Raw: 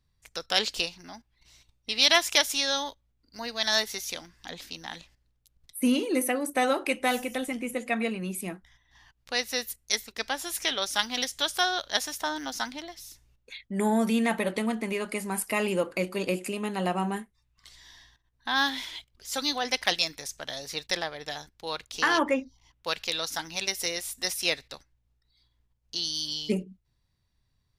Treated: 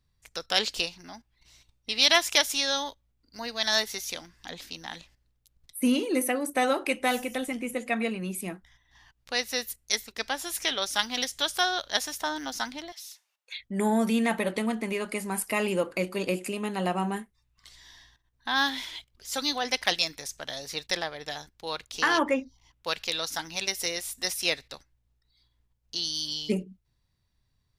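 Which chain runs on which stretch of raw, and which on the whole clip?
12.92–13.60 s: high-pass 710 Hz 24 dB/octave + dynamic bell 3.6 kHz, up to +5 dB, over -56 dBFS, Q 0.96
whole clip: none

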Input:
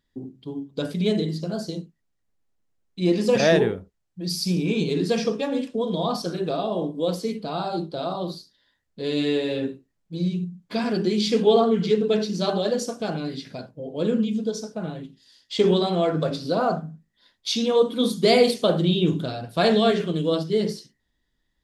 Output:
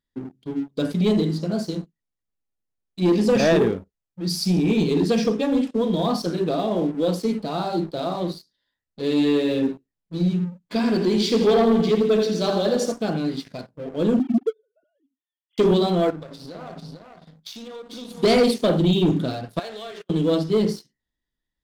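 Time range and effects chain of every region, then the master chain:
10.75–12.92 s: bass shelf 100 Hz -12 dB + feedback delay 83 ms, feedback 53%, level -8 dB
14.19–15.58 s: formants replaced by sine waves + upward expansion 2.5:1, over -32 dBFS
16.10–18.23 s: compression 12:1, threshold -34 dBFS + delay 447 ms -5 dB
19.59–20.10 s: high-pass 460 Hz + gate -31 dBFS, range -30 dB + compression 4:1, threshold -35 dBFS
whole clip: dynamic bell 260 Hz, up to +6 dB, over -35 dBFS, Q 1.3; waveshaping leveller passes 2; trim -6.5 dB

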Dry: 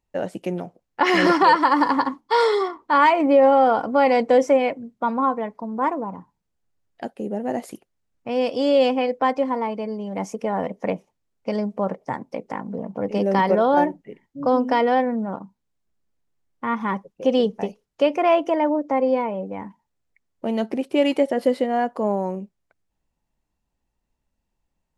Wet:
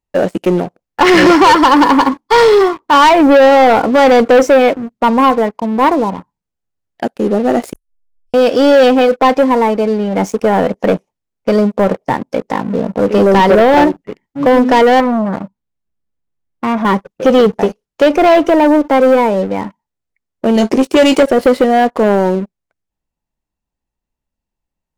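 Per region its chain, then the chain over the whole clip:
7.73–8.34 s: inverse Chebyshev band-stop 120–2000 Hz, stop band 70 dB + tilt EQ -3.5 dB/octave
15.00–16.85 s: tone controls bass +4 dB, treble -5 dB + transformer saturation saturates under 980 Hz
20.54–21.23 s: peaking EQ 6.4 kHz +12 dB 1.1 oct + doubling 19 ms -8.5 dB
whole clip: dynamic bell 380 Hz, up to +4 dB, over -34 dBFS, Q 2; waveshaping leveller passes 3; trim +2 dB

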